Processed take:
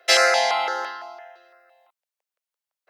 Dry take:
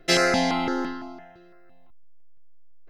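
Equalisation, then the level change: steep high-pass 520 Hz 36 dB/oct; +5.0 dB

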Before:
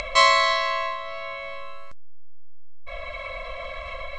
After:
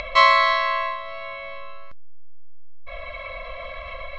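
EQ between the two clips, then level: air absorption 260 m; high shelf 3300 Hz +9 dB; dynamic EQ 1400 Hz, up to +6 dB, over -33 dBFS, Q 1.6; 0.0 dB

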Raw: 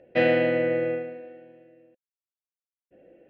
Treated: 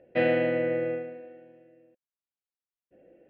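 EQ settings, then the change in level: air absorption 160 m; -2.5 dB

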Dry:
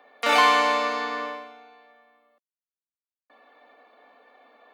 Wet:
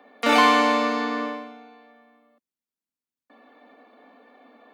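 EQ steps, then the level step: bell 240 Hz +14 dB 1.1 oct; 0.0 dB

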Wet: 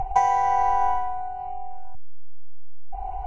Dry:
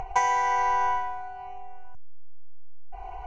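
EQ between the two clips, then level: tone controls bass +5 dB, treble +2 dB; low shelf 470 Hz +9.5 dB; bell 790 Hz +14.5 dB 0.35 oct; -7.0 dB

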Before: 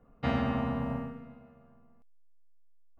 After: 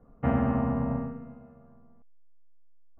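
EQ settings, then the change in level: Gaussian blur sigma 4 samples; air absorption 350 m; +5.0 dB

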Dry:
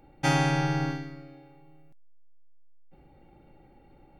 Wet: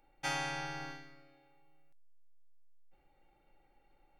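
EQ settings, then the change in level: bell 77 Hz -12.5 dB 1.1 oct; bell 210 Hz -13.5 dB 2.8 oct; -6.5 dB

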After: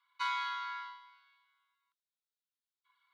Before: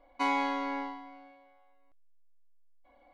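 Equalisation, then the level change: rippled Chebyshev high-pass 980 Hz, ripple 9 dB; bell 3700 Hz +3.5 dB 0.21 oct; dynamic EQ 1500 Hz, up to +5 dB, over -56 dBFS, Q 2.7; +1.5 dB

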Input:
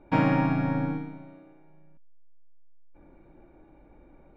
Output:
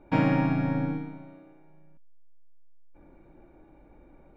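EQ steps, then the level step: dynamic EQ 1100 Hz, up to -4 dB, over -43 dBFS, Q 1.4; 0.0 dB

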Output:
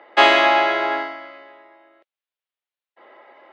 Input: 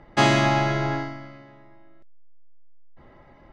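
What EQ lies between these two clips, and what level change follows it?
HPF 410 Hz 24 dB/oct; resonant high shelf 4500 Hz -10.5 dB, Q 1.5; +6.5 dB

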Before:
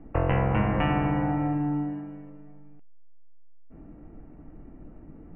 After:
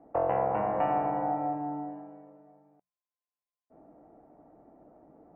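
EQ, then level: band-pass 700 Hz, Q 2.6; air absorption 150 m; +5.5 dB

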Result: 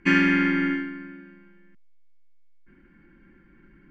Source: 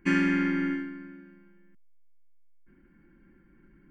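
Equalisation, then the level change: LPF 3300 Hz 12 dB/oct; high shelf 2300 Hz +12 dB; +3.5 dB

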